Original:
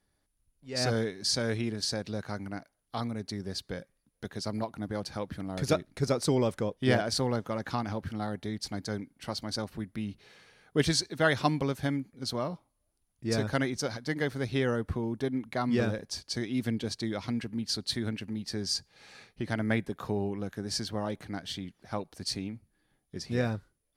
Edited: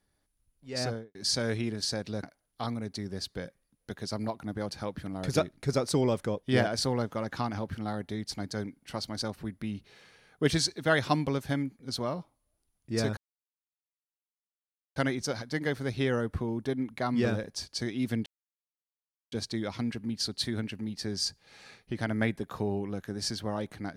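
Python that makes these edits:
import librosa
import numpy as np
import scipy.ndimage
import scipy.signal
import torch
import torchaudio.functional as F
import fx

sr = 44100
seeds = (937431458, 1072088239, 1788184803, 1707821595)

y = fx.studio_fade_out(x, sr, start_s=0.71, length_s=0.44)
y = fx.edit(y, sr, fx.cut(start_s=2.23, length_s=0.34),
    fx.insert_silence(at_s=13.51, length_s=1.79),
    fx.insert_silence(at_s=16.81, length_s=1.06), tone=tone)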